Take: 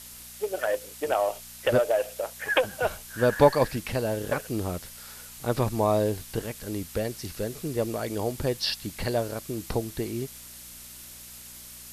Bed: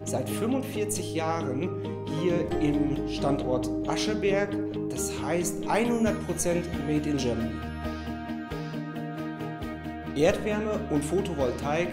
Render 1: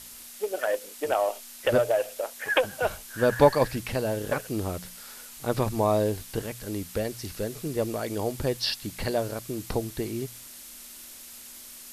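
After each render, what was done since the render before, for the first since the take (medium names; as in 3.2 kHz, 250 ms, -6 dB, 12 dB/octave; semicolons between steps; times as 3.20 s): de-hum 60 Hz, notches 3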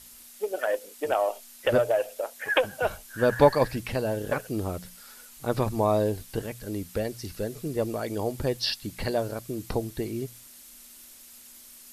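noise reduction 6 dB, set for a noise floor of -45 dBFS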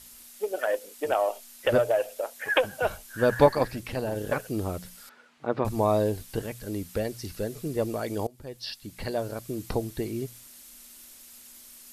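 3.46–4.16 s: AM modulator 240 Hz, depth 40%; 5.09–5.65 s: band-pass 190–2200 Hz; 8.27–9.52 s: fade in, from -23.5 dB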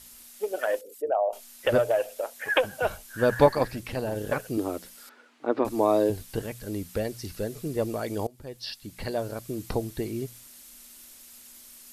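0.81–1.33 s: resonances exaggerated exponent 2; 4.57–6.10 s: resonant low shelf 210 Hz -9.5 dB, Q 3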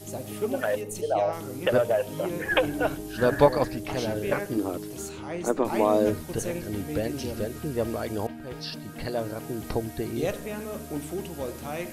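add bed -6.5 dB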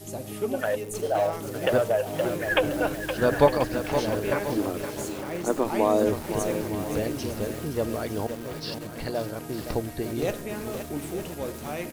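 delay 909 ms -14 dB; bit-crushed delay 518 ms, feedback 55%, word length 6-bit, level -8 dB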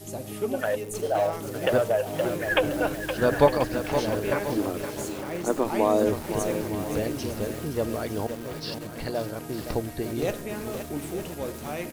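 no audible change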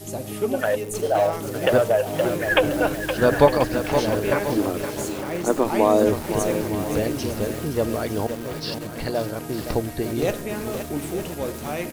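trim +4.5 dB; peak limiter -3 dBFS, peak gain reduction 1.5 dB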